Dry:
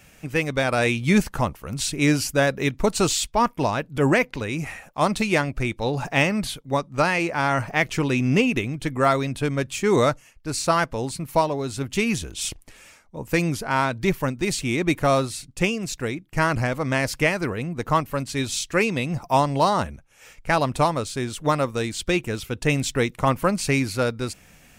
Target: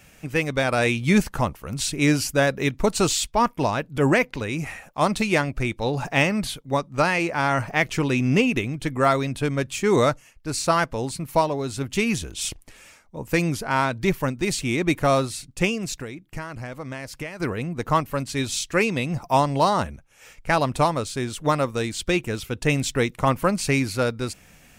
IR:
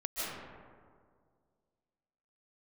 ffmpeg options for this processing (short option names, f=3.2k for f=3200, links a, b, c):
-filter_complex "[0:a]asettb=1/sr,asplit=3[a][b][c];[a]atrim=end=15.994[d];[b]atrim=start=15.99:end=17.4,asetpts=PTS-STARTPTS,afade=t=in:d=0.004:c=qsin,afade=t=out:st=1.406:d=0.004:c=qsin,acompressor=threshold=-31dB:ratio=6[e];[c]atrim=start=17.396[f];[d][e]acrossfade=d=0.004:c1=hsin:c2=qsin[g];[g][f]acrossfade=d=0.004:c1=qsin:c2=hsin"